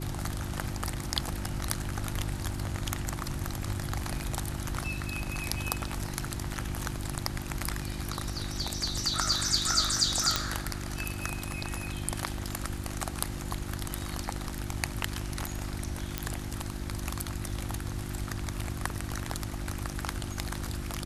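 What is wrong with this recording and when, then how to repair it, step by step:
hum 50 Hz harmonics 7 -38 dBFS
10.36 s: pop -8 dBFS
16.18 s: pop -12 dBFS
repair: de-click; de-hum 50 Hz, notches 7

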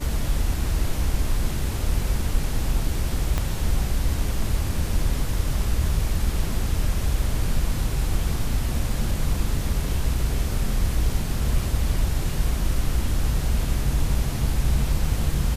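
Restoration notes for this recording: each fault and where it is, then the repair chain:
3.38 s: pop -11 dBFS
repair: de-click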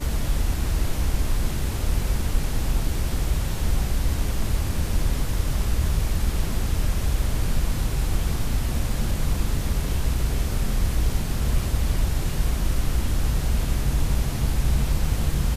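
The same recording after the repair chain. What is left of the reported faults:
3.38 s: pop

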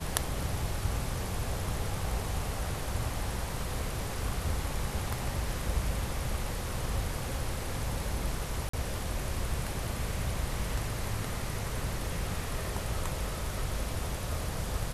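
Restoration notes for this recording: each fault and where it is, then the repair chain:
8.69–8.73 s: dropout 44 ms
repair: interpolate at 8.69 s, 44 ms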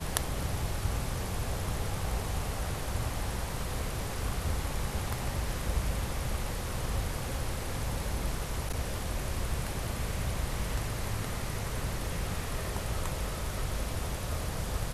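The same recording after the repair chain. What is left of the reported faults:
nothing left

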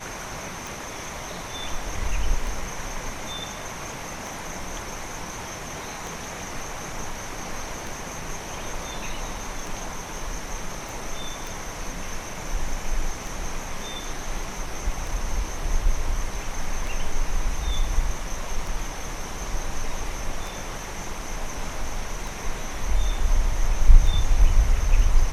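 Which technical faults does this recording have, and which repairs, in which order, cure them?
tick 33 1/3 rpm
10.89 s: pop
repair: de-click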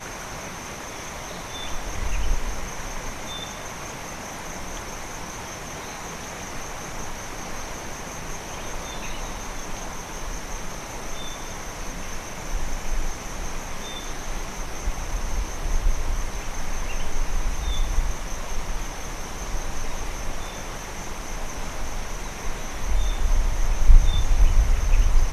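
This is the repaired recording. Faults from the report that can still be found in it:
nothing left

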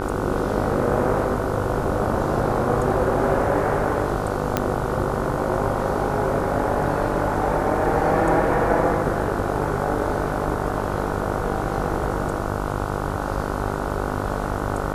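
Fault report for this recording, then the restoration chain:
buzz 50 Hz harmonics 30 -27 dBFS
4.57 s: pop -5 dBFS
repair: de-click; de-hum 50 Hz, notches 30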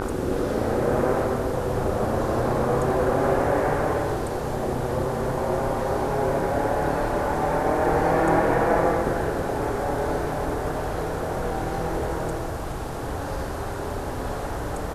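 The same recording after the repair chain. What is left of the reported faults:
nothing left

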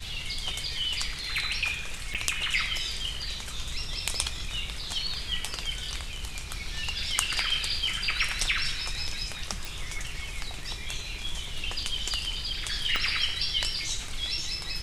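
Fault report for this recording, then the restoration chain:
2.14–2.15 s: dropout 7.7 ms
9.65 s: pop
12.96 s: pop -14 dBFS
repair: de-click; interpolate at 2.14 s, 7.7 ms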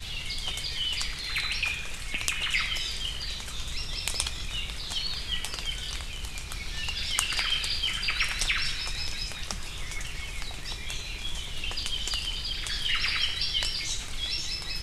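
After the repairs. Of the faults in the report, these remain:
12.96 s: pop

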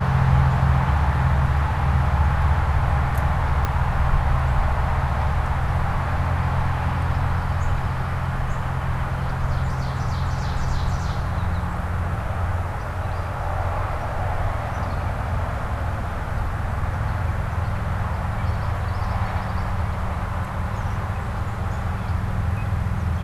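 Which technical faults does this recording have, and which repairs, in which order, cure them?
3.65 s: pop -9 dBFS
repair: de-click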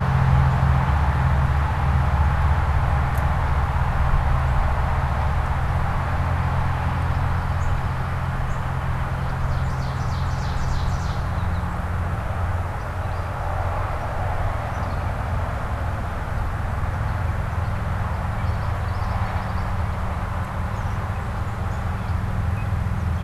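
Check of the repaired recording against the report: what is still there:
3.65 s: pop

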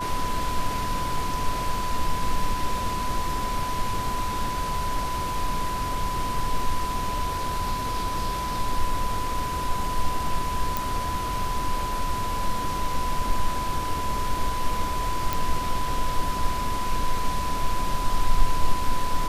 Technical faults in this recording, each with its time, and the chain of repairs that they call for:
whine 1 kHz -28 dBFS
10.77 s: pop
15.33 s: pop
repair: de-click; band-stop 1 kHz, Q 30

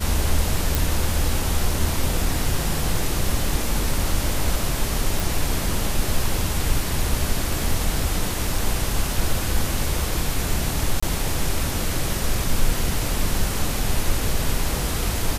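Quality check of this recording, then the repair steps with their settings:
0.75 s: pop
5.20 s: pop
11.00–11.03 s: dropout 25 ms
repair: de-click; interpolate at 11.00 s, 25 ms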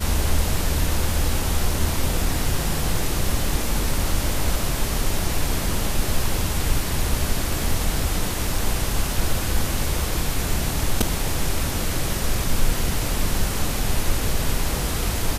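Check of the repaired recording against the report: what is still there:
nothing left

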